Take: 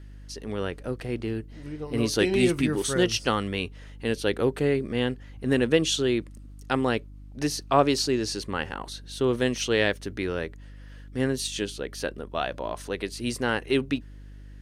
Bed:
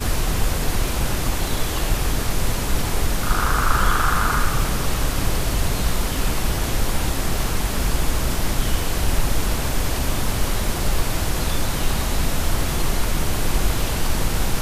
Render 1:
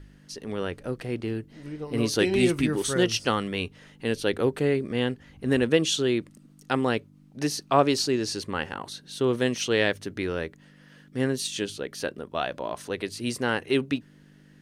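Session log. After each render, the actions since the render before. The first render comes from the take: de-hum 50 Hz, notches 2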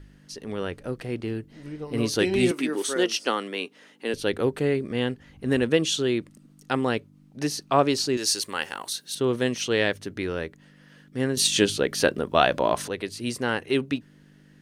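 2.51–4.14 HPF 250 Hz 24 dB/oct; 8.17–9.15 RIAA curve recording; 11.37–12.88 gain +9.5 dB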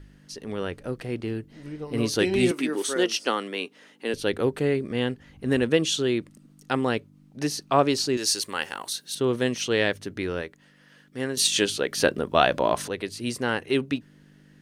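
10.41–11.98 low shelf 300 Hz -8.5 dB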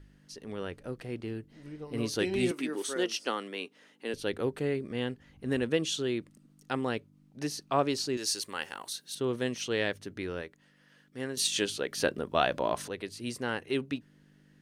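gain -7 dB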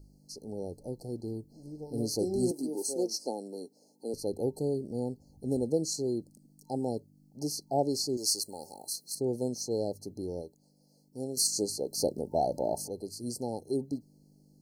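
FFT band-reject 900–4100 Hz; high shelf 10000 Hz +10.5 dB

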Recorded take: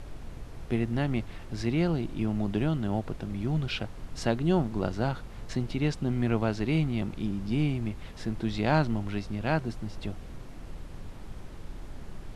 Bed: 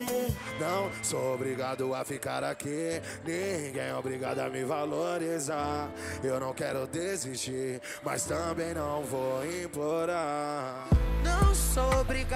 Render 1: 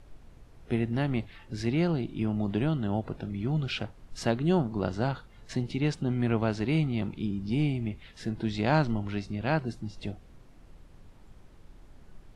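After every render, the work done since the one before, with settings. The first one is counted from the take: noise print and reduce 11 dB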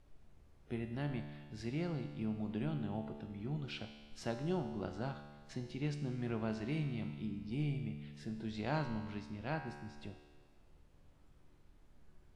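resonator 73 Hz, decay 1.6 s, harmonics all, mix 80%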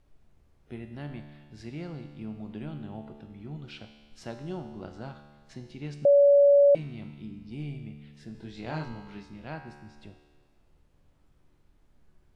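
6.05–6.75 bleep 568 Hz -14.5 dBFS; 8.32–9.47 doubler 25 ms -3.5 dB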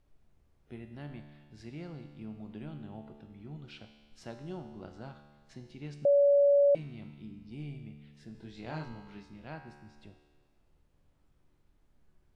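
gain -5 dB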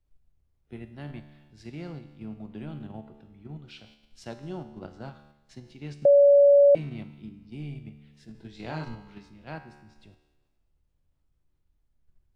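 in parallel at +0.5 dB: level quantiser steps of 15 dB; on the sum: three-band expander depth 40%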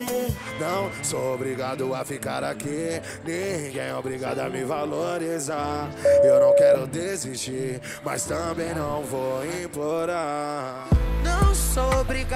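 add bed +4.5 dB

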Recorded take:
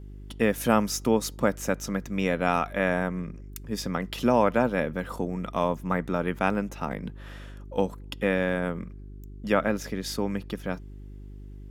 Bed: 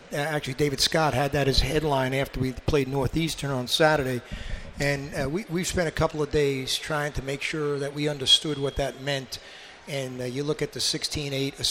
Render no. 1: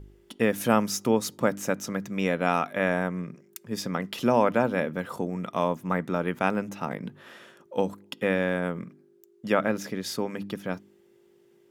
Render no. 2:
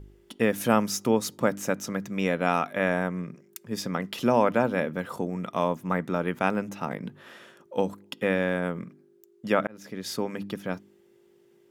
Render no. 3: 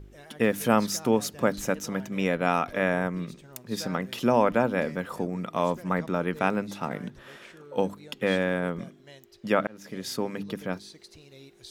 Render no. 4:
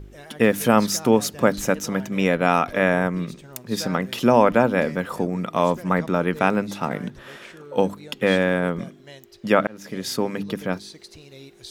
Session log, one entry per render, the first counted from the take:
de-hum 50 Hz, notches 6
9.67–10.14 fade in
add bed -22 dB
gain +6 dB; limiter -2 dBFS, peak gain reduction 2.5 dB

